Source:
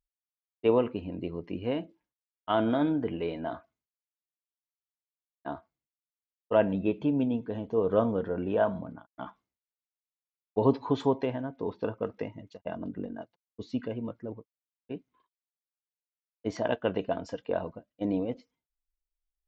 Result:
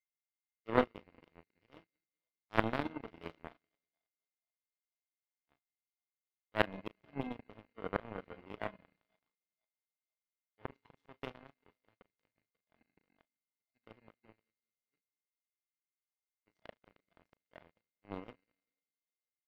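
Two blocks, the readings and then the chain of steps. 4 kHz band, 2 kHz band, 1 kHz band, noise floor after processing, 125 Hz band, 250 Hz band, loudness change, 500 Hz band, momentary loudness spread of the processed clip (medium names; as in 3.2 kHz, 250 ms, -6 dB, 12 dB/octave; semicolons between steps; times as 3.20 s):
-6.5 dB, -1.5 dB, -7.5 dB, under -85 dBFS, -12.5 dB, -15.0 dB, -9.0 dB, -14.0 dB, 23 LU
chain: median filter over 5 samples; slow attack 122 ms; whistle 2.1 kHz -39 dBFS; doubling 36 ms -6 dB; two-band feedback delay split 590 Hz, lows 196 ms, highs 489 ms, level -13 dB; power-law waveshaper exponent 3; trim +5.5 dB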